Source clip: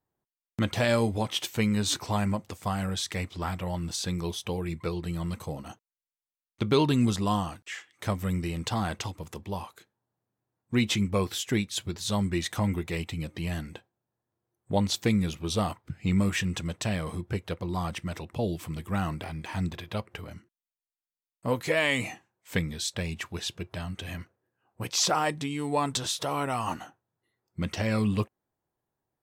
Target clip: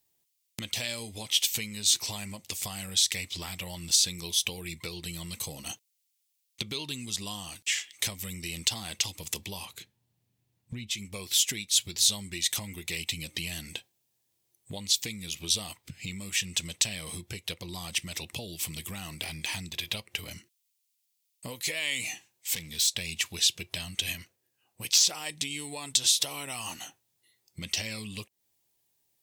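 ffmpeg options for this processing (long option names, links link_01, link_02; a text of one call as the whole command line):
ffmpeg -i in.wav -filter_complex "[0:a]asettb=1/sr,asplit=3[link_01][link_02][link_03];[link_01]atrim=end=9.654[link_04];[link_02]atrim=start=9.65:end=10.91,asetpts=PTS-STARTPTS,afade=type=in:duration=0.004:curve=qsin,afade=type=out:start_time=1.256:duration=0.004:curve=qsin,bass=frequency=250:gain=14,treble=frequency=4000:gain=-8[link_05];[link_03]atrim=start=10.906[link_06];[link_04][link_05]acrossfade=duration=0.004:curve1=hsin:curve2=qsin[link_07];[link_07][link_06]acrossfade=duration=0.004:curve1=qsin:curve2=hsin,acompressor=threshold=-36dB:ratio=10,asplit=3[link_08][link_09][link_10];[link_08]afade=type=out:start_time=22.04:duration=0.02[link_11];[link_09]asoftclip=type=hard:threshold=-39dB,afade=type=in:start_time=22.04:duration=0.02,afade=type=out:start_time=22.87:duration=0.02[link_12];[link_10]afade=type=in:start_time=22.87:duration=0.02[link_13];[link_11][link_12][link_13]amix=inputs=3:normalize=0,aexciter=amount=7.5:drive=4.4:freq=2100,asettb=1/sr,asplit=3[link_14][link_15][link_16];[link_14]atrim=end=24.124[link_17];[link_15]atrim=start=24.12:end=25.03,asetpts=PTS-STARTPTS,afade=type=in:duration=0.004:curve=qsin,afade=type=out:start_time=0.906:duration=0.004:curve=qsin,aeval=exprs='0.562*(cos(1*acos(clip(val(0)/0.562,-1,1)))-cos(1*PI/2))+0.0224*(cos(7*acos(clip(val(0)/0.562,-1,1)))-cos(7*PI/2))':channel_layout=same[link_18];[link_16]atrim=start=25.026[link_19];[link_17][link_18]acrossfade=duration=0.004:curve1=hsin:curve2=qsin[link_20];[link_20][link_19]acrossfade=duration=0.004:curve1=qsin:curve2=hsin,volume=-2dB" out.wav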